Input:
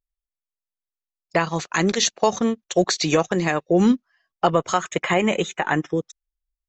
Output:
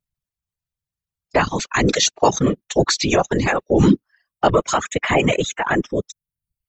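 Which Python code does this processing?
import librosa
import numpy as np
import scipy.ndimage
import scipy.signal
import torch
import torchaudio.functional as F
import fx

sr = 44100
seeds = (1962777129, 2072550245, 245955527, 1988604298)

y = fx.whisperise(x, sr, seeds[0])
y = fx.transient(y, sr, attack_db=-3, sustain_db=3)
y = fx.dereverb_blind(y, sr, rt60_s=0.67)
y = y * librosa.db_to_amplitude(4.0)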